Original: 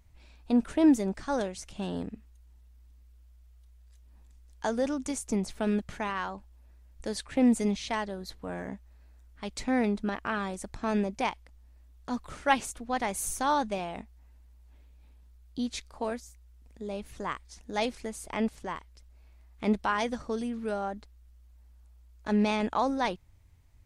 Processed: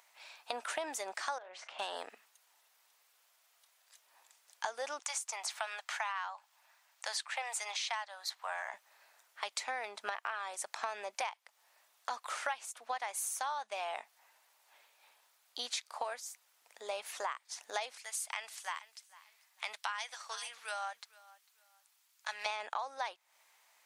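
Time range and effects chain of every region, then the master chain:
1.38–1.79 LPF 2100 Hz + compressor 8:1, threshold -39 dBFS + doubler 38 ms -10.5 dB
4.99–8.74 HPF 710 Hz 24 dB/oct + bell 11000 Hz -6 dB 0.46 oct
17.98–22.46 passive tone stack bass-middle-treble 10-0-10 + feedback echo 0.449 s, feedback 27%, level -23 dB
whole clip: HPF 700 Hz 24 dB/oct; compressor 12:1, threshold -44 dBFS; gain +9.5 dB

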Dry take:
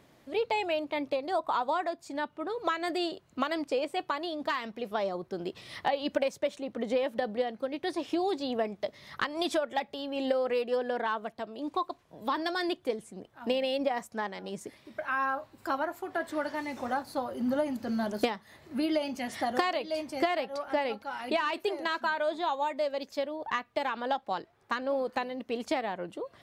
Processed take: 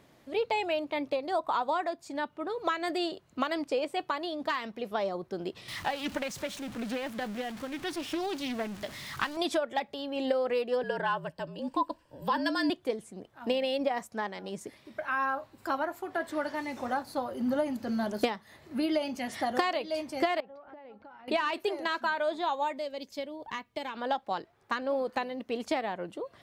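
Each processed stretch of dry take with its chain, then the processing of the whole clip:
5.68–9.37 zero-crossing step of -38 dBFS + bell 500 Hz -9.5 dB 1.1 oct + Doppler distortion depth 0.32 ms
10.83–12.7 ripple EQ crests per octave 1.3, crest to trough 9 dB + frequency shift -46 Hz
20.4–21.28 compressor 10:1, threshold -43 dBFS + tape spacing loss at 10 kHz 37 dB
22.78–23.95 bell 1100 Hz -9.5 dB 2.3 oct + small resonant body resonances 980/2200/3100 Hz, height 8 dB
whole clip: dry

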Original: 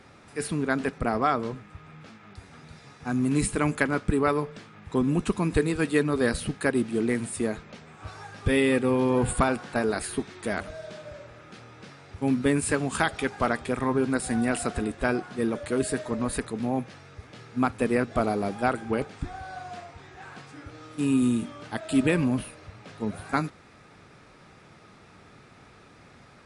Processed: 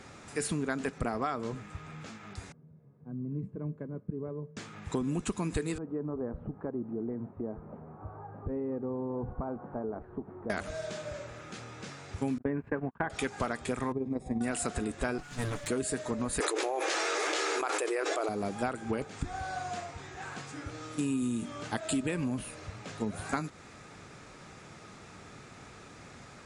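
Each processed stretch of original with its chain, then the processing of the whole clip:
2.52–4.57 upward compressor, threshold -41 dBFS + ladder band-pass 200 Hz, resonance 35% + comb 1.9 ms, depth 41%
5.78–10.5 compressor 2:1, threshold -42 dBFS + LPF 1000 Hz 24 dB/oct
12.38–13.1 notch 1300 Hz, Q 8.6 + gate -29 dBFS, range -45 dB + LPF 1700 Hz 24 dB/oct
13.92–14.41 running mean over 30 samples + AM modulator 20 Hz, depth 35%
15.18–15.68 minimum comb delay 6.9 ms + bell 510 Hz -10.5 dB 1.8 oct
16.4–18.29 brick-wall FIR high-pass 300 Hz + fast leveller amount 100%
whole clip: bell 7000 Hz +9 dB 0.52 oct; compressor 6:1, threshold -31 dBFS; gain +2 dB

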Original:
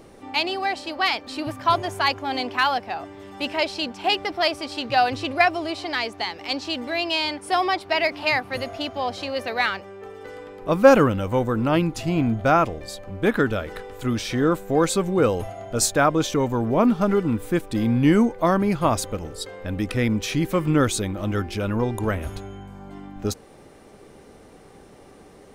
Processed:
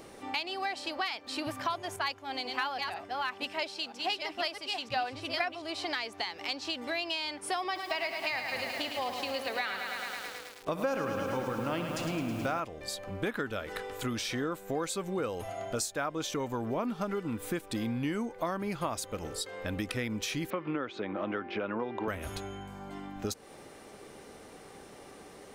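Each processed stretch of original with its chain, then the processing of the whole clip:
1.96–5.62 reverse delay 0.491 s, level -3.5 dB + three-band expander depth 100%
7.64–12.6 expander -31 dBFS + flutter echo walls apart 10.7 m, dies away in 0.27 s + lo-fi delay 0.107 s, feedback 80%, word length 7-bit, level -8 dB
20.5–22.08 BPF 240–2600 Hz + air absorption 150 m + three-band squash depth 70%
whole clip: tilt +2 dB/oct; compressor 5:1, threshold -31 dBFS; high shelf 5200 Hz -5 dB

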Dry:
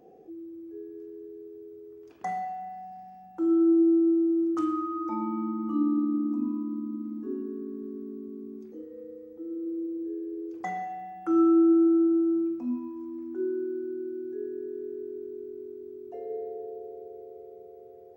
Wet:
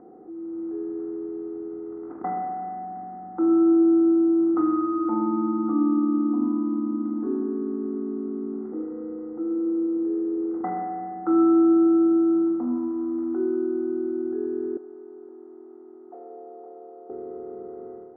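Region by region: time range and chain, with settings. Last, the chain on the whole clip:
14.77–17.1 ladder band-pass 850 Hz, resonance 45% + echo 0.516 s -8.5 dB
whole clip: per-bin compression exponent 0.6; steep low-pass 1600 Hz 36 dB/oct; AGC gain up to 9.5 dB; gain -7 dB

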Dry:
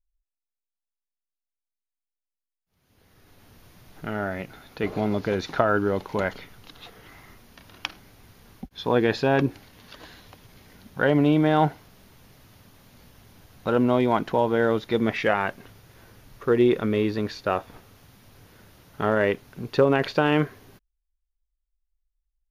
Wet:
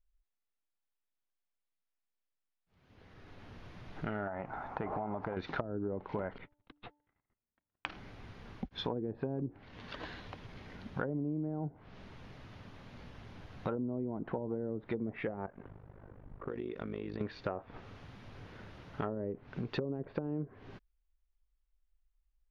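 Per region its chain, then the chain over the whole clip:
4.27–5.37 EQ curve 460 Hz 0 dB, 850 Hz +15 dB, 3900 Hz -16 dB, 7000 Hz -8 dB + compressor 4:1, threshold -27 dBFS
6.38–7.86 gate -44 dBFS, range -46 dB + air absorption 350 m + de-hum 294.3 Hz, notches 3
15.46–17.21 low-pass opened by the level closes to 870 Hz, open at -16.5 dBFS + compressor, threshold -34 dBFS + AM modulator 50 Hz, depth 80%
whole clip: LPF 3100 Hz 12 dB/oct; treble ducked by the level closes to 370 Hz, closed at -17.5 dBFS; compressor 5:1, threshold -37 dBFS; gain +2 dB

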